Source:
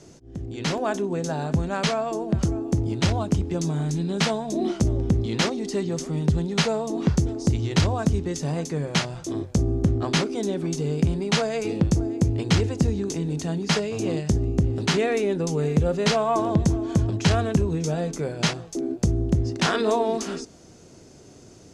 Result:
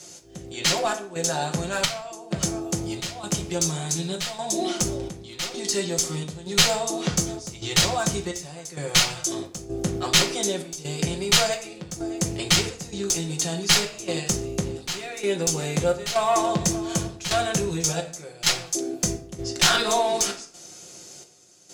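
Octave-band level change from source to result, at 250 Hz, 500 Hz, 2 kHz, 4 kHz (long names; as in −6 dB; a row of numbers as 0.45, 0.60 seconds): −5.5, −2.0, +3.0, +7.0 decibels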